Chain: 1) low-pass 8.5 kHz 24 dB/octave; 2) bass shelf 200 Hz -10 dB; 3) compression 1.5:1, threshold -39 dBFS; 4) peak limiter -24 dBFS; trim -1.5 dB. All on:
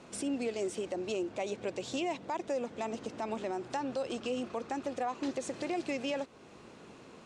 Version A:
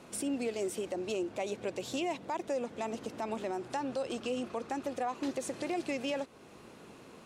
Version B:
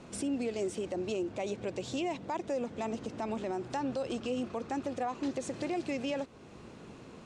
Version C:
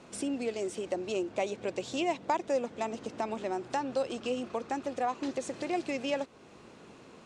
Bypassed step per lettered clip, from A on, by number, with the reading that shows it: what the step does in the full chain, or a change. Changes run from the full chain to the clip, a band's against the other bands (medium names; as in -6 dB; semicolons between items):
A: 1, 8 kHz band +2.0 dB; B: 2, 125 Hz band +6.0 dB; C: 4, crest factor change +7.5 dB